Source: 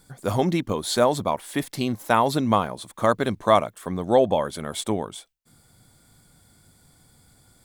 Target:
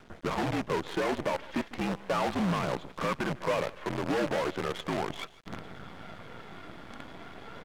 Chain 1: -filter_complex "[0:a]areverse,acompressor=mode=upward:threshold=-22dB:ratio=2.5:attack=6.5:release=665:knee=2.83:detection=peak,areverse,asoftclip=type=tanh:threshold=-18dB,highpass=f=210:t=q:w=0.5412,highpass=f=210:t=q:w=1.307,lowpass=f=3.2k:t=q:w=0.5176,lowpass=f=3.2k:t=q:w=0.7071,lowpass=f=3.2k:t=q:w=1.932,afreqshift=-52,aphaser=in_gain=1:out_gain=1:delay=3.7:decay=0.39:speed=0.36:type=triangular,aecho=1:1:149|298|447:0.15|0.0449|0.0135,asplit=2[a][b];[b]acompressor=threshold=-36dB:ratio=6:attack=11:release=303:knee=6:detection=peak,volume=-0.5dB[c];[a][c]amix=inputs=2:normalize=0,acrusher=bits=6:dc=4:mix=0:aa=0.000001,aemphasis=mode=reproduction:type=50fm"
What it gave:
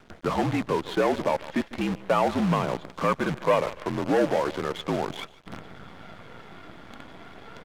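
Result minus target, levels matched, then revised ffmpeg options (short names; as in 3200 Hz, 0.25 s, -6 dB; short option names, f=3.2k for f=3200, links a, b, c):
soft clip: distortion -7 dB
-filter_complex "[0:a]areverse,acompressor=mode=upward:threshold=-22dB:ratio=2.5:attack=6.5:release=665:knee=2.83:detection=peak,areverse,asoftclip=type=tanh:threshold=-29.5dB,highpass=f=210:t=q:w=0.5412,highpass=f=210:t=q:w=1.307,lowpass=f=3.2k:t=q:w=0.5176,lowpass=f=3.2k:t=q:w=0.7071,lowpass=f=3.2k:t=q:w=1.932,afreqshift=-52,aphaser=in_gain=1:out_gain=1:delay=3.7:decay=0.39:speed=0.36:type=triangular,aecho=1:1:149|298|447:0.15|0.0449|0.0135,asplit=2[a][b];[b]acompressor=threshold=-36dB:ratio=6:attack=11:release=303:knee=6:detection=peak,volume=-0.5dB[c];[a][c]amix=inputs=2:normalize=0,acrusher=bits=6:dc=4:mix=0:aa=0.000001,aemphasis=mode=reproduction:type=50fm"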